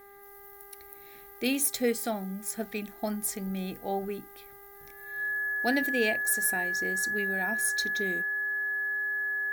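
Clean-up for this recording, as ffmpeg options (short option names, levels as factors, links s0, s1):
-af "bandreject=f=400.8:t=h:w=4,bandreject=f=801.6:t=h:w=4,bandreject=f=1202.4:t=h:w=4,bandreject=f=1603.2:t=h:w=4,bandreject=f=2004:t=h:w=4,bandreject=f=1700:w=30"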